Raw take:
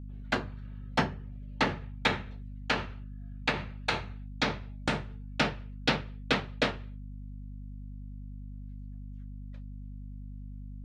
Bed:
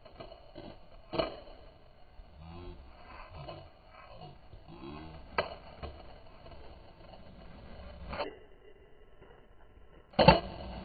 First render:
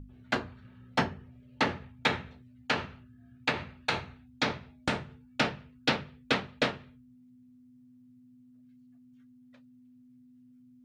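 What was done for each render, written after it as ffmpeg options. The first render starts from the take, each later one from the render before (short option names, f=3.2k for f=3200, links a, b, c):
-af "bandreject=f=50:t=h:w=6,bandreject=f=100:t=h:w=6,bandreject=f=150:t=h:w=6,bandreject=f=200:t=h:w=6"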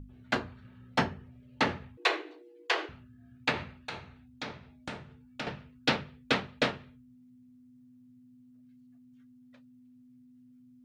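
-filter_complex "[0:a]asettb=1/sr,asplit=3[a][b][c];[a]atrim=end=1.974[d];[b]atrim=start=1.97:end=2.89,asetpts=PTS-STARTPTS,afade=t=in:d=0.004:c=qsin,afade=t=out:st=0.916:d=0.004:c=qsin,afreqshift=230[e];[c]atrim=start=2.886[f];[d][e]acrossfade=d=0.004:c1=hsin:c2=qsin[g];[g][f]acrossfade=d=0.004:c1=qsin:c2=hsin,asettb=1/sr,asplit=3[h][i][j];[h]atrim=end=3.784[k];[i]atrim=start=3.78:end=5.47,asetpts=PTS-STARTPTS,afade=t=in:d=0.004:c=qsin,afade=t=out:st=1.686:d=0.004:c=qsin,acompressor=threshold=-53dB:ratio=1.5:attack=3.2:release=140:knee=1:detection=peak[l];[j]atrim=start=5.466[m];[k][l]acrossfade=d=0.004:c1=hsin:c2=qsin[n];[n][m]acrossfade=d=0.004:c1=qsin:c2=hsin"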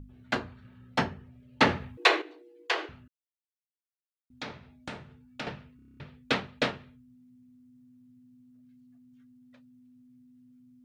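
-filter_complex "[0:a]asettb=1/sr,asplit=3[a][b][c];[a]atrim=end=1.614[d];[b]atrim=start=1.61:end=2.22,asetpts=PTS-STARTPTS,afade=t=in:d=0.004:c=qsin,afade=t=out:st=0.606:d=0.004:c=qsin,acontrast=55[e];[c]atrim=start=2.216[f];[d][e]acrossfade=d=0.004:c1=hsin:c2=qsin[g];[g][f]acrossfade=d=0.004:c1=qsin:c2=hsin,asplit=11[h][i][j][k][l][m][n][o][p][q][r];[h]atrim=end=3.08,asetpts=PTS-STARTPTS,afade=t=out:st=3.076:d=0.004:c=hsin[s];[i]atrim=start=3.08:end=4.3,asetpts=PTS-STARTPTS,volume=0[t];[j]atrim=start=4.3:end=5.792,asetpts=PTS-STARTPTS,afade=t=in:d=0.004:c=hsin[u];[k]atrim=start=5.758:end=5.792[v];[l]atrim=start=5.758:end=5.792[w];[m]atrim=start=5.758:end=5.792[x];[n]atrim=start=5.758:end=5.792[y];[o]atrim=start=5.758:end=5.792[z];[p]atrim=start=5.758:end=5.792[aa];[q]atrim=start=5.758:end=5.792[ab];[r]atrim=start=5.998[ac];[s][t][u]concat=n=3:v=0:a=1[ad];[ad][v]acrossfade=d=0.004:c1=hsin:c2=hsin[ae];[ae][w]acrossfade=d=0.004:c1=hsin:c2=hsin[af];[af][x]acrossfade=d=0.004:c1=hsin:c2=hsin[ag];[ag][y]acrossfade=d=0.004:c1=hsin:c2=hsin[ah];[ah][z]acrossfade=d=0.004:c1=hsin:c2=hsin[ai];[ai][aa]acrossfade=d=0.004:c1=hsin:c2=hsin[aj];[aj][ab]acrossfade=d=0.004:c1=hsin:c2=hsin[ak];[ak][ac]acrossfade=d=0.004:c1=hsin:c2=hsin"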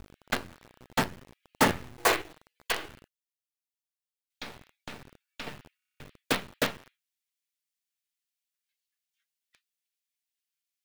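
-filter_complex "[0:a]acrossover=split=1800[a][b];[a]acrusher=bits=5:dc=4:mix=0:aa=0.000001[c];[b]aeval=exprs='(mod(11.9*val(0)+1,2)-1)/11.9':c=same[d];[c][d]amix=inputs=2:normalize=0"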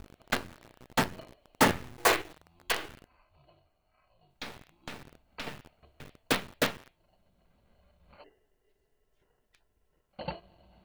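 -filter_complex "[1:a]volume=-17.5dB[a];[0:a][a]amix=inputs=2:normalize=0"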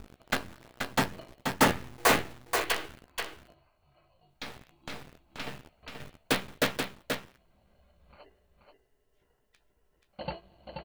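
-filter_complex "[0:a]asplit=2[a][b];[b]adelay=15,volume=-11dB[c];[a][c]amix=inputs=2:normalize=0,aecho=1:1:481:0.531"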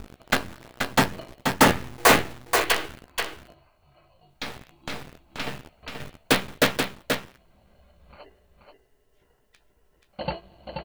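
-af "volume=7dB,alimiter=limit=-3dB:level=0:latency=1"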